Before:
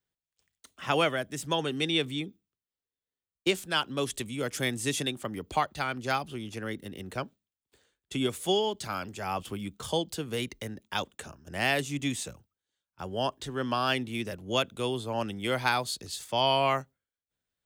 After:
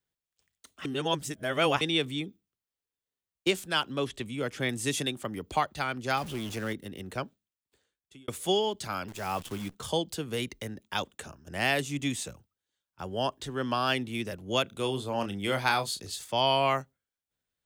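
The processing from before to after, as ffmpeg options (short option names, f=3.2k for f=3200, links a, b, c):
-filter_complex "[0:a]asettb=1/sr,asplit=3[a][b][c];[a]atrim=end=3.834[d];[b]atrim=start=3.83:end=4.69,asetpts=PTS-STARTPTS,afade=t=in:d=0.004:c=qsin,afade=t=out:st=0.856:d=0.004:c=qsin,acrossover=split=4100[e][f];[f]acompressor=threshold=-52dB:ratio=4:attack=1:release=60[g];[e][g]amix=inputs=2:normalize=0[h];[c]atrim=start=4.686[i];[d][h]acrossfade=d=0.004:c1=hsin:c2=qsin[j];[j][i]acrossfade=d=0.004:c1=qsin:c2=hsin,asettb=1/sr,asplit=3[k][l][m];[k]atrim=end=6.174[n];[l]atrim=start=6.17:end=6.73,asetpts=PTS-STARTPTS,afade=t=in:d=0.004:c=qsin,afade=t=out:st=0.556:d=0.004:c=qsin,aeval=exprs='val(0)+0.5*0.0126*sgn(val(0))':c=same[o];[m]atrim=start=6.726[p];[n][o]acrossfade=d=0.004:c1=hsin:c2=qsin[q];[q][p]acrossfade=d=0.004:c1=qsin:c2=hsin,asettb=1/sr,asplit=3[r][s][t];[r]atrim=end=9.084[u];[s]atrim=start=9.08:end=9.75,asetpts=PTS-STARTPTS,afade=t=in:d=0.004:c=qsin,afade=t=out:st=0.666:d=0.004:c=qsin,acrusher=bits=8:dc=4:mix=0:aa=0.000001[v];[t]atrim=start=9.746[w];[u][v]acrossfade=d=0.004:c1=hsin:c2=qsin[x];[x][w]acrossfade=d=0.004:c1=qsin:c2=hsin,asettb=1/sr,asplit=3[y][z][aa];[y]atrim=end=14.634[ab];[z]atrim=start=14.63:end=16.15,asetpts=PTS-STARTPTS,afade=t=in:d=0.004:c=qsin,afade=t=out:st=1.516:d=0.004:c=qsin,asplit=2[ac][ad];[ad]adelay=30,volume=-9dB[ae];[ac][ae]amix=inputs=2:normalize=0,atrim=end_sample=67032[af];[aa]atrim=start=16.146[ag];[ab][af]acrossfade=d=0.004:c1=hsin:c2=qsin[ah];[ah][ag]acrossfade=d=0.004:c1=qsin:c2=hsin,asplit=4[ai][aj][ak][al];[ai]atrim=end=0.852[am];[aj]atrim=start=0.848:end=1.812,asetpts=PTS-STARTPTS,areverse[an];[ak]atrim=start=1.808:end=8.28,asetpts=PTS-STARTPTS,afade=t=out:st=5.432:d=1.04[ao];[al]atrim=start=8.28,asetpts=PTS-STARTPTS,afade=t=in:d=0.004:c=hsin[ap];[am][an]acrossfade=d=0.004:c1=hsin:c2=hsin[aq];[ao][ap]concat=n=2:v=0:a=1[ar];[aq][ar]acrossfade=d=0.004:c1=hsin:c2=hsin"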